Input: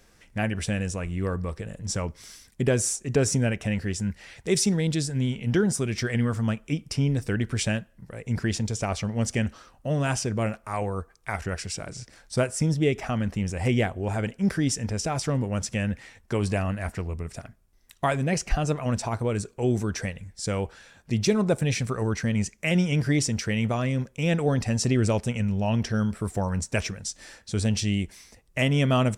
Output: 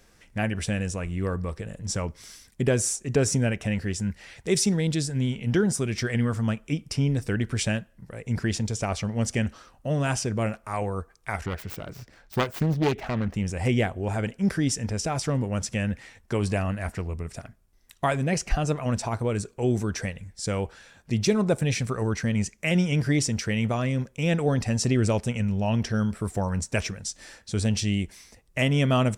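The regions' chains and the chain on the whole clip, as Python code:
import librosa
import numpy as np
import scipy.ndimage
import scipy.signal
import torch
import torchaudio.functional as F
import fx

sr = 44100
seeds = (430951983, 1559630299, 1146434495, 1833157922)

y = fx.chain(x, sr, fx.self_delay(depth_ms=0.55),
    fx.peak_eq(hz=9900.0, db=-12.0, octaves=1.6), at=(11.46, 13.34))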